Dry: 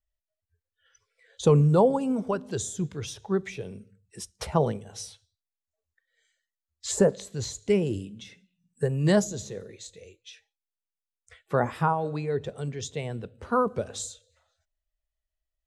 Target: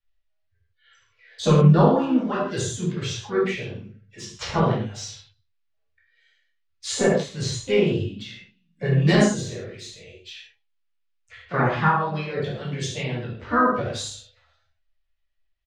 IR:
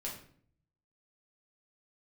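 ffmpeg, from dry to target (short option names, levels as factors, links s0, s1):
-filter_complex "[0:a]aresample=16000,aresample=44100,acrossover=split=320|440|4400[s0][s1][s2][s3];[s2]tiltshelf=f=730:g=-9[s4];[s3]aeval=exprs='sgn(val(0))*max(abs(val(0))-0.00266,0)':c=same[s5];[s0][s1][s4][s5]amix=inputs=4:normalize=0[s6];[1:a]atrim=start_sample=2205,atrim=end_sample=4410,asetrate=26019,aresample=44100[s7];[s6][s7]afir=irnorm=-1:irlink=0,asplit=2[s8][s9];[s9]asetrate=55563,aresample=44100,atempo=0.793701,volume=0.355[s10];[s8][s10]amix=inputs=2:normalize=0"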